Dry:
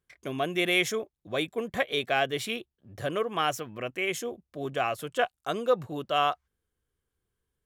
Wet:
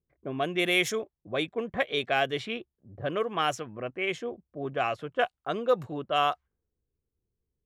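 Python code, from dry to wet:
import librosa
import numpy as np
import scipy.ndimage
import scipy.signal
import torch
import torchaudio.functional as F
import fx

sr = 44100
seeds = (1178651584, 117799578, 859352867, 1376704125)

y = fx.env_lowpass(x, sr, base_hz=460.0, full_db=-22.0)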